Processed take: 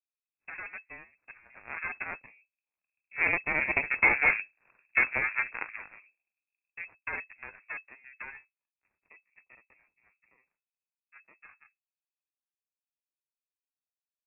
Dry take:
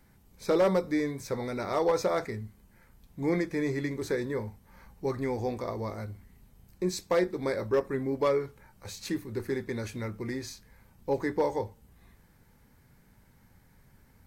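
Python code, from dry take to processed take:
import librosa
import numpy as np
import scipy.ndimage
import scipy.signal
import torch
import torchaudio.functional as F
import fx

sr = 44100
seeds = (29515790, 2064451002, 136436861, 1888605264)

y = fx.doppler_pass(x, sr, speed_mps=7, closest_m=3.6, pass_at_s=4.44)
y = fx.cheby_harmonics(y, sr, harmonics=(6, 7), levels_db=(-15, -17), full_scale_db=-21.0)
y = fx.freq_invert(y, sr, carrier_hz=2600)
y = F.gain(torch.from_numpy(y), 8.5).numpy()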